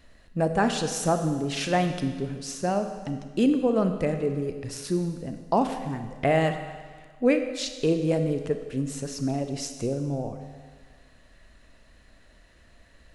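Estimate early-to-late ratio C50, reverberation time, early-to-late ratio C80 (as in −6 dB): 8.0 dB, 1.6 s, 9.0 dB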